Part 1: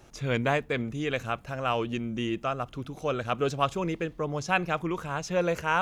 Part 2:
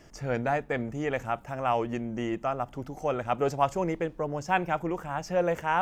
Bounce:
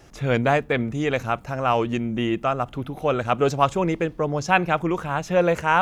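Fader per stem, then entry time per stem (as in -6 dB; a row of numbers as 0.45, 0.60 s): +2.5, 0.0 dB; 0.00, 0.00 s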